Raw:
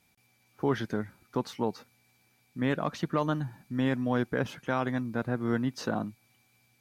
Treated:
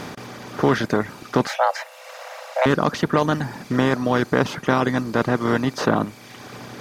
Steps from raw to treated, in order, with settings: per-bin compression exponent 0.4; 1.47–2.66 frequency shift +390 Hz; reverb removal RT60 1.1 s; gain +7 dB

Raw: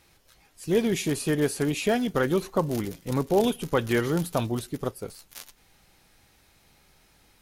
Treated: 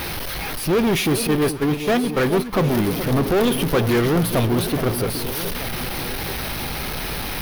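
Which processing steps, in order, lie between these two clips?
zero-crossing step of -30 dBFS; 1.27–2.53 gate -23 dBFS, range -16 dB; bell 7300 Hz -15 dB 0.49 oct; sample leveller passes 3; echo with dull and thin repeats by turns 0.419 s, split 980 Hz, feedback 73%, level -9.5 dB; gain -2.5 dB

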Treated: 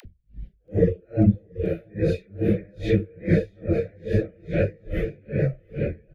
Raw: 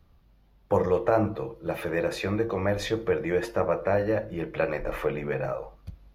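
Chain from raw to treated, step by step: phase scrambler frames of 0.2 s; Chebyshev band-stop 510–1900 Hz, order 2; tone controls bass +13 dB, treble -13 dB; upward compressor, threshold -31 dBFS; dispersion lows, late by 56 ms, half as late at 480 Hz; reverb removal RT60 0.92 s; bouncing-ball echo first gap 0.68 s, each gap 0.8×, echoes 5; dB-linear tremolo 2.4 Hz, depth 35 dB; gain +6.5 dB

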